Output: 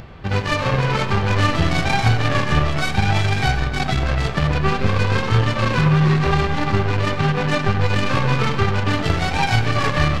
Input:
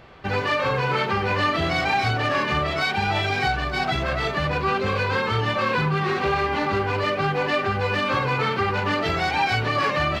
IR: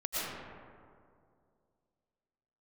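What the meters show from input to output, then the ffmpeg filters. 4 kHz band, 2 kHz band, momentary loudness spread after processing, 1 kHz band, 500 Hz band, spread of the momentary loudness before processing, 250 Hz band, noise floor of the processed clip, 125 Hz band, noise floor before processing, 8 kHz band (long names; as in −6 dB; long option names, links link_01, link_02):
+2.0 dB, +1.0 dB, 3 LU, 0.0 dB, +0.5 dB, 2 LU, +6.5 dB, −24 dBFS, +10.0 dB, −27 dBFS, +8.5 dB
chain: -filter_complex "[0:a]aeval=exprs='0.316*(cos(1*acos(clip(val(0)/0.316,-1,1)))-cos(1*PI/2))+0.0112*(cos(2*acos(clip(val(0)/0.316,-1,1)))-cos(2*PI/2))+0.0501*(cos(3*acos(clip(val(0)/0.316,-1,1)))-cos(3*PI/2))+0.0178*(cos(7*acos(clip(val(0)/0.316,-1,1)))-cos(7*PI/2))':channel_layout=same,asplit=2[link_01][link_02];[1:a]atrim=start_sample=2205,asetrate=57330,aresample=44100[link_03];[link_02][link_03]afir=irnorm=-1:irlink=0,volume=-11dB[link_04];[link_01][link_04]amix=inputs=2:normalize=0,acompressor=mode=upward:threshold=-34dB:ratio=2.5,bass=frequency=250:gain=11,treble=frequency=4000:gain=0,volume=3.5dB"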